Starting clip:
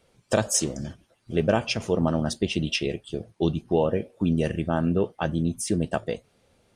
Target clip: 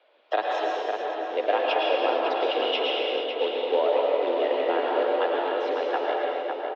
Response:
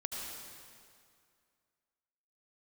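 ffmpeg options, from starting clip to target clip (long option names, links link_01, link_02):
-filter_complex "[0:a]asplit=2[link_01][link_02];[link_02]acompressor=threshold=-34dB:ratio=16,volume=1dB[link_03];[link_01][link_03]amix=inputs=2:normalize=0,acrusher=bits=4:mode=log:mix=0:aa=0.000001,asplit=2[link_04][link_05];[link_05]adelay=553,lowpass=frequency=2500:poles=1,volume=-4dB,asplit=2[link_06][link_07];[link_07]adelay=553,lowpass=frequency=2500:poles=1,volume=0.46,asplit=2[link_08][link_09];[link_09]adelay=553,lowpass=frequency=2500:poles=1,volume=0.46,asplit=2[link_10][link_11];[link_11]adelay=553,lowpass=frequency=2500:poles=1,volume=0.46,asplit=2[link_12][link_13];[link_13]adelay=553,lowpass=frequency=2500:poles=1,volume=0.46,asplit=2[link_14][link_15];[link_15]adelay=553,lowpass=frequency=2500:poles=1,volume=0.46[link_16];[link_04][link_06][link_08][link_10][link_12][link_14][link_16]amix=inputs=7:normalize=0[link_17];[1:a]atrim=start_sample=2205,afade=type=out:start_time=0.39:duration=0.01,atrim=end_sample=17640,asetrate=31752,aresample=44100[link_18];[link_17][link_18]afir=irnorm=-1:irlink=0,highpass=frequency=310:width_type=q:width=0.5412,highpass=frequency=310:width_type=q:width=1.307,lowpass=frequency=3600:width_type=q:width=0.5176,lowpass=frequency=3600:width_type=q:width=0.7071,lowpass=frequency=3600:width_type=q:width=1.932,afreqshift=100,volume=-2.5dB"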